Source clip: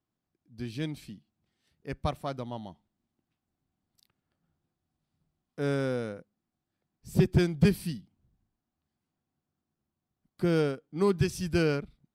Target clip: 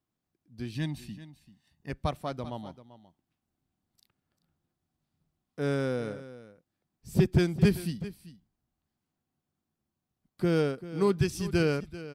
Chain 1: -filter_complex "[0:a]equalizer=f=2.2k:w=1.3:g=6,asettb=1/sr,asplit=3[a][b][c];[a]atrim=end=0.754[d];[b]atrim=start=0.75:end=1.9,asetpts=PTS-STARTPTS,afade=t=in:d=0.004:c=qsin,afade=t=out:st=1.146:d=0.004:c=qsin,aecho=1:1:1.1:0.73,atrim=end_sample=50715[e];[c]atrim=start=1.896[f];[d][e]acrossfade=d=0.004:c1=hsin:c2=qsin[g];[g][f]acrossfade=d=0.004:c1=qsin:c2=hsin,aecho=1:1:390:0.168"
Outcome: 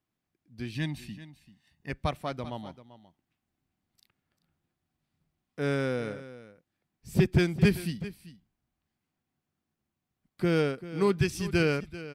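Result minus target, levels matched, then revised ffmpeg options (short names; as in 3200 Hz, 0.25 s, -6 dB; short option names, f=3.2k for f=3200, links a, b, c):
2000 Hz band +4.0 dB
-filter_complex "[0:a]asettb=1/sr,asplit=3[a][b][c];[a]atrim=end=0.754[d];[b]atrim=start=0.75:end=1.9,asetpts=PTS-STARTPTS,afade=t=in:d=0.004:c=qsin,afade=t=out:st=1.146:d=0.004:c=qsin,aecho=1:1:1.1:0.73,atrim=end_sample=50715[e];[c]atrim=start=1.896[f];[d][e]acrossfade=d=0.004:c1=hsin:c2=qsin[g];[g][f]acrossfade=d=0.004:c1=qsin:c2=hsin,aecho=1:1:390:0.168"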